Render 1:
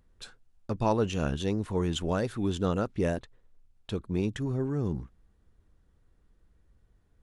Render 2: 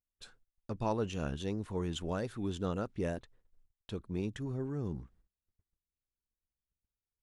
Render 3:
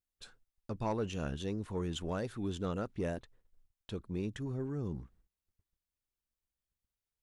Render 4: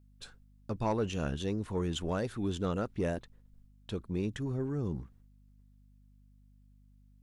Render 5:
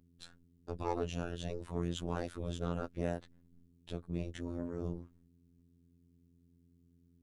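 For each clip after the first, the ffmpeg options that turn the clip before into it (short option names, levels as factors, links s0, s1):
-af "agate=range=0.0501:threshold=0.00158:ratio=16:detection=peak,volume=0.447"
-af "asoftclip=type=tanh:threshold=0.0596"
-af "aeval=exprs='val(0)+0.000708*(sin(2*PI*50*n/s)+sin(2*PI*2*50*n/s)/2+sin(2*PI*3*50*n/s)/3+sin(2*PI*4*50*n/s)/4+sin(2*PI*5*50*n/s)/5)':c=same,volume=1.5"
-af "tremolo=f=210:d=0.857,afftfilt=real='hypot(re,im)*cos(PI*b)':imag='0':win_size=2048:overlap=0.75,volume=1.33"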